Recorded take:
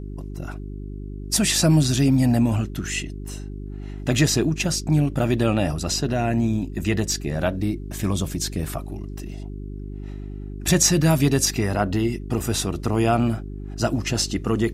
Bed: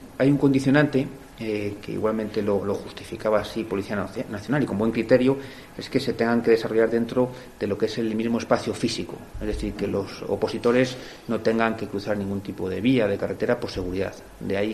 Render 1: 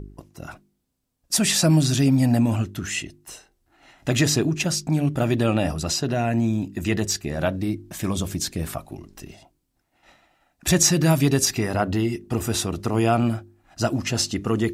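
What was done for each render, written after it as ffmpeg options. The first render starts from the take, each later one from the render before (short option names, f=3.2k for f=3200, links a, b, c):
-af "bandreject=f=50:t=h:w=4,bandreject=f=100:t=h:w=4,bandreject=f=150:t=h:w=4,bandreject=f=200:t=h:w=4,bandreject=f=250:t=h:w=4,bandreject=f=300:t=h:w=4,bandreject=f=350:t=h:w=4,bandreject=f=400:t=h:w=4"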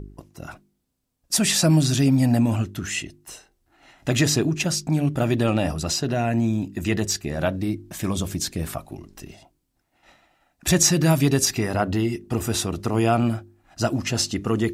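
-filter_complex "[0:a]asettb=1/sr,asplit=3[a][b][c];[a]atrim=end=5.464[d];[b]atrim=start=5.46:end=6.19,asetpts=PTS-STARTPTS,afade=t=in:d=0.004:c=qsin,afade=t=out:st=0.726:d=0.004:c=qsin,aeval=exprs='clip(val(0),-1,0.141)':c=same[e];[c]atrim=start=6.186[f];[d][e]acrossfade=d=0.004:c1=hsin:c2=qsin[g];[g][f]acrossfade=d=0.004:c1=qsin:c2=hsin"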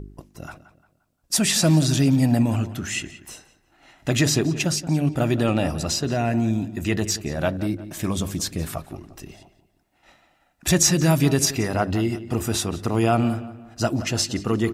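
-filter_complex "[0:a]asplit=2[a][b];[b]adelay=175,lowpass=f=3.2k:p=1,volume=-14dB,asplit=2[c][d];[d]adelay=175,lowpass=f=3.2k:p=1,volume=0.39,asplit=2[e][f];[f]adelay=175,lowpass=f=3.2k:p=1,volume=0.39,asplit=2[g][h];[h]adelay=175,lowpass=f=3.2k:p=1,volume=0.39[i];[a][c][e][g][i]amix=inputs=5:normalize=0"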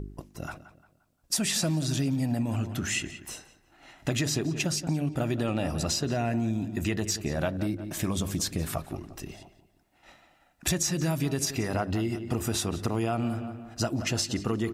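-af "acompressor=threshold=-25dB:ratio=6"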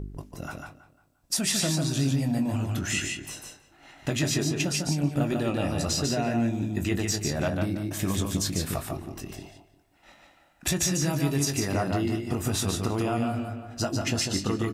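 -filter_complex "[0:a]asplit=2[a][b];[b]adelay=21,volume=-9dB[c];[a][c]amix=inputs=2:normalize=0,aecho=1:1:147:0.631"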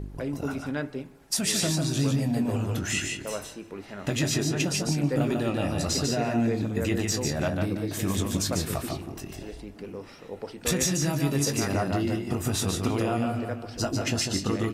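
-filter_complex "[1:a]volume=-13dB[a];[0:a][a]amix=inputs=2:normalize=0"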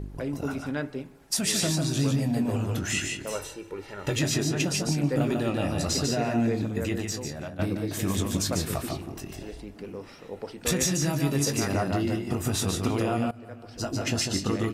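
-filter_complex "[0:a]asettb=1/sr,asplit=3[a][b][c];[a]atrim=end=3.354[d];[b]atrim=start=3.35:end=4.19,asetpts=PTS-STARTPTS,afade=t=in:d=0.004:c=qsin,afade=t=out:st=0.836:d=0.004:c=qsin,aecho=1:1:2.2:0.65,atrim=end_sample=37044[e];[c]atrim=start=4.186[f];[d][e]acrossfade=d=0.004:c1=hsin:c2=qsin[g];[g][f]acrossfade=d=0.004:c1=qsin:c2=hsin,asplit=3[h][i][j];[h]atrim=end=7.59,asetpts=PTS-STARTPTS,afade=t=out:st=6.57:d=1.02:silence=0.223872[k];[i]atrim=start=7.59:end=13.31,asetpts=PTS-STARTPTS,afade=t=in:d=0.004:c=hsin:silence=0.223872,afade=t=out:st=5.716:d=0.004:c=hsin:silence=0.1[l];[j]atrim=start=13.31,asetpts=PTS-STARTPTS,afade=t=in:d=0.82:silence=0.1[m];[k][l][m]concat=n=3:v=0:a=1"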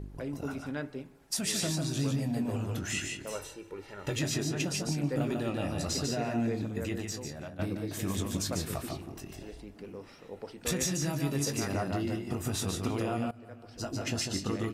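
-af "volume=-5.5dB"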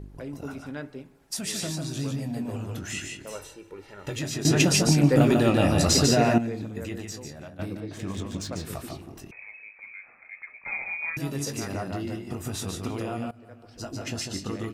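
-filter_complex "[0:a]asettb=1/sr,asplit=3[a][b][c];[a]atrim=end=7.804[d];[b]atrim=start=7.8:end=8.65,asetpts=PTS-STARTPTS,afade=t=in:d=0.004:c=qsin,afade=t=out:st=0.846:d=0.004:c=qsin,adynamicsmooth=sensitivity=6:basefreq=5.1k[e];[c]atrim=start=8.646[f];[d][e]acrossfade=d=0.004:c1=hsin:c2=qsin[g];[g][f]acrossfade=d=0.004:c1=qsin:c2=hsin,asettb=1/sr,asplit=3[h][i][j];[h]atrim=end=9.314[k];[i]atrim=start=9.31:end=11.17,asetpts=PTS-STARTPTS,afade=t=in:d=0.004:c=qsin,afade=t=out:st=1.856:d=0.004:c=qsin,lowpass=f=2.2k:t=q:w=0.5098,lowpass=f=2.2k:t=q:w=0.6013,lowpass=f=2.2k:t=q:w=0.9,lowpass=f=2.2k:t=q:w=2.563,afreqshift=-2600[l];[j]atrim=start=11.166[m];[k][l]acrossfade=d=0.004:c1=hsin:c2=qsin[n];[n][m]acrossfade=d=0.004:c1=qsin:c2=hsin,asplit=3[o][p][q];[o]atrim=end=4.452[r];[p]atrim=start=4.448:end=6.382,asetpts=PTS-STARTPTS,volume=12dB[s];[q]atrim=start=6.378[t];[r][s]acrossfade=d=0.004:c1=hsin:c2=hsin[u];[u][t]acrossfade=d=0.004:c1=hsin:c2=hsin"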